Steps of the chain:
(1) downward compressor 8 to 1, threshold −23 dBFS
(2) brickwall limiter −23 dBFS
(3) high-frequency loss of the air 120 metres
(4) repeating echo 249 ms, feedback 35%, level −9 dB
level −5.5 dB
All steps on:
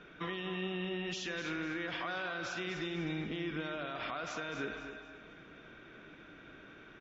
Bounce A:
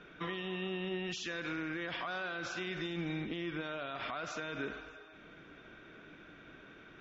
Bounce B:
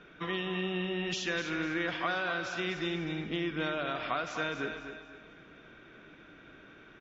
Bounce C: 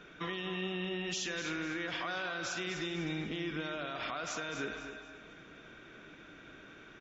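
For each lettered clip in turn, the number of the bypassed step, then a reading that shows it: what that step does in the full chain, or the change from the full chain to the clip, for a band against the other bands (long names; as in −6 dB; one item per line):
4, change in crest factor −1.5 dB
2, average gain reduction 2.5 dB
3, 4 kHz band +2.5 dB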